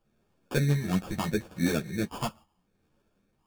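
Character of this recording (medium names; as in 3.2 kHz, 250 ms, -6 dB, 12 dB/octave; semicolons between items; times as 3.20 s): phasing stages 8, 0.75 Hz, lowest notch 390–1600 Hz; aliases and images of a low sample rate 2 kHz, jitter 0%; a shimmering, thickened sound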